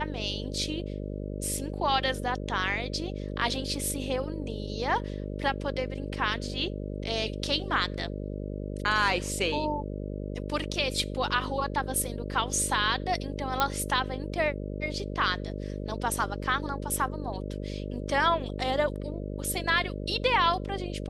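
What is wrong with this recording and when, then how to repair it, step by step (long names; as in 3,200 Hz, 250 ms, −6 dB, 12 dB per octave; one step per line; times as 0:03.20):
mains buzz 50 Hz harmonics 12 −35 dBFS
0:13.60: click −10 dBFS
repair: click removal
hum removal 50 Hz, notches 12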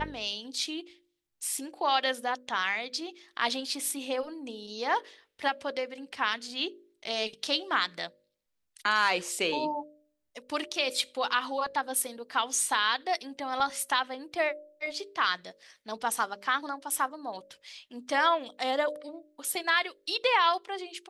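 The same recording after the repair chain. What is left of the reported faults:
none of them is left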